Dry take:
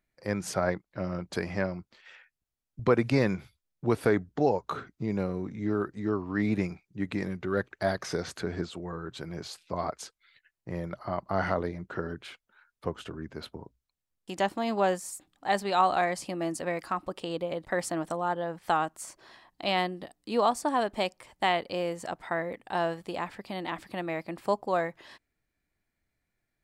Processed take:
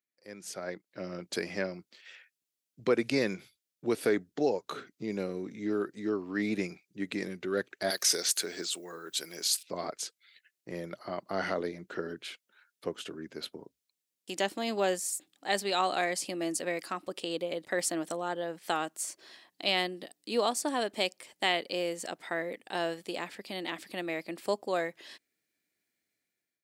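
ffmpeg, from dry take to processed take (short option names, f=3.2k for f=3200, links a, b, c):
-filter_complex "[0:a]asettb=1/sr,asplit=3[a][b][c];[a]atrim=end=7.904[d];[b]atrim=start=7.9:end=9.63,asetpts=PTS-STARTPTS,afade=t=in:d=0.004:c=qsin,afade=t=out:st=1.726:d=0.004:c=qsin,aemphasis=mode=production:type=riaa[e];[c]atrim=start=9.626[f];[d][e]acrossfade=d=0.004:c1=hsin:c2=qsin[g];[g][f]acrossfade=d=0.004:c1=qsin:c2=hsin,equalizer=f=960:w=0.74:g=-14,dynaudnorm=f=320:g=5:m=14dB,highpass=360,volume=-7.5dB"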